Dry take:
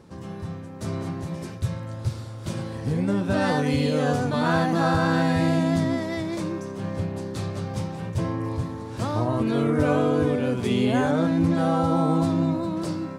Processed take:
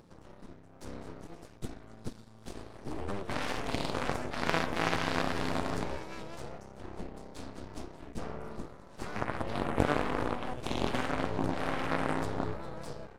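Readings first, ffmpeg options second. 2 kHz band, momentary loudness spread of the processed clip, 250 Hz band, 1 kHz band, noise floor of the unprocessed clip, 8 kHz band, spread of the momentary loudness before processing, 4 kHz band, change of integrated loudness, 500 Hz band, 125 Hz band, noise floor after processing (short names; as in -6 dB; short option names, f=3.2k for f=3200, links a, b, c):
-5.5 dB, 16 LU, -14.5 dB, -7.5 dB, -37 dBFS, -6.0 dB, 10 LU, -5.0 dB, -10.5 dB, -10.5 dB, -15.0 dB, -54 dBFS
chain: -af "aeval=exprs='0.376*(cos(1*acos(clip(val(0)/0.376,-1,1)))-cos(1*PI/2))+0.133*(cos(3*acos(clip(val(0)/0.376,-1,1)))-cos(3*PI/2))+0.015*(cos(6*acos(clip(val(0)/0.376,-1,1)))-cos(6*PI/2))+0.0299*(cos(8*acos(clip(val(0)/0.376,-1,1)))-cos(8*PI/2))':c=same,acompressor=mode=upward:threshold=-45dB:ratio=2.5"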